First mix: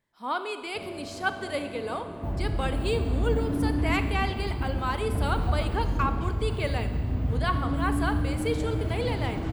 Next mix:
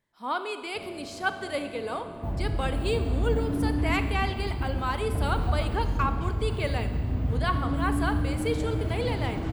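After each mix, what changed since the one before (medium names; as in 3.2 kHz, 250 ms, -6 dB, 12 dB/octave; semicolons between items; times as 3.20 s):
first sound: send off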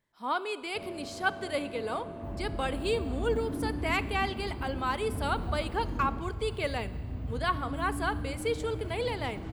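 speech: send -7.0 dB; second sound -9.0 dB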